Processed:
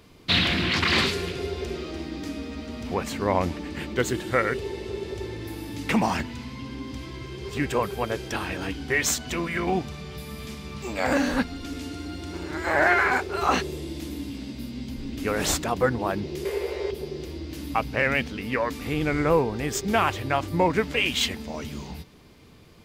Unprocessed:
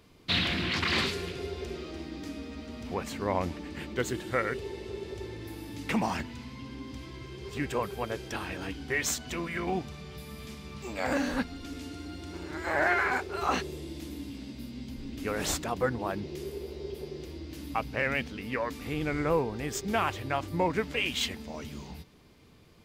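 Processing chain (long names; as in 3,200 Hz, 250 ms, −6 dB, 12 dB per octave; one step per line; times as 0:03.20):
0:16.45–0:16.91: octave-band graphic EQ 125/250/500/1,000/2,000/8,000 Hz −10/−9/+10/+7/+12/+4 dB
level +6 dB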